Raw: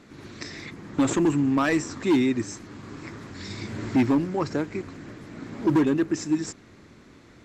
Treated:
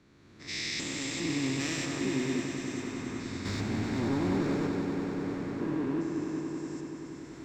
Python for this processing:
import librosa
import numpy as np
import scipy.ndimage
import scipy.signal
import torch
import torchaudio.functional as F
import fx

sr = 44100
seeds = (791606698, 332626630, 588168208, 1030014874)

p1 = fx.spec_steps(x, sr, hold_ms=400)
p2 = fx.recorder_agc(p1, sr, target_db=-23.0, rise_db_per_s=14.0, max_gain_db=30)
p3 = fx.high_shelf_res(p2, sr, hz=1800.0, db=9.0, q=1.5, at=(0.47, 1.84), fade=0.02)
p4 = fx.leveller(p3, sr, passes=2, at=(3.45, 4.67))
p5 = p4 + fx.echo_swell(p4, sr, ms=96, loudest=5, wet_db=-10, dry=0)
p6 = fx.band_widen(p5, sr, depth_pct=40)
y = F.gain(torch.from_numpy(p6), -7.5).numpy()